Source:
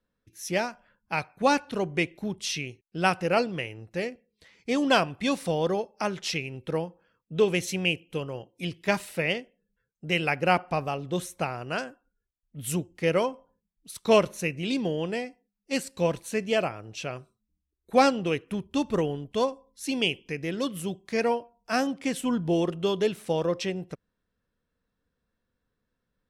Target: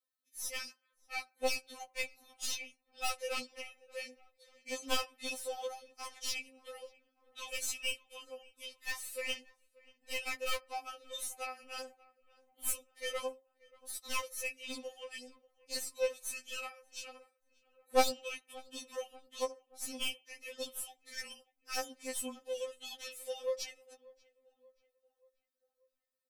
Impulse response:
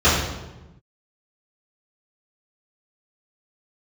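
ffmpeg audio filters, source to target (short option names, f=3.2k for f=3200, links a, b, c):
-filter_complex "[0:a]highpass=290,aecho=1:1:5.5:0.49,aeval=exprs='0.631*(cos(1*acos(clip(val(0)/0.631,-1,1)))-cos(1*PI/2))+0.178*(cos(3*acos(clip(val(0)/0.631,-1,1)))-cos(3*PI/2))+0.01*(cos(6*acos(clip(val(0)/0.631,-1,1)))-cos(6*PI/2))':c=same,crystalizer=i=5.5:c=0,aeval=exprs='(tanh(20*val(0)+0.5)-tanh(0.5))/20':c=same,asplit=2[a][b];[b]adelay=584,lowpass=f=2.1k:p=1,volume=-22.5dB,asplit=2[c][d];[d]adelay=584,lowpass=f=2.1k:p=1,volume=0.53,asplit=2[e][f];[f]adelay=584,lowpass=f=2.1k:p=1,volume=0.53,asplit=2[g][h];[h]adelay=584,lowpass=f=2.1k:p=1,volume=0.53[i];[c][e][g][i]amix=inputs=4:normalize=0[j];[a][j]amix=inputs=2:normalize=0,afftfilt=real='re*3.46*eq(mod(b,12),0)':imag='im*3.46*eq(mod(b,12),0)':win_size=2048:overlap=0.75,volume=2.5dB"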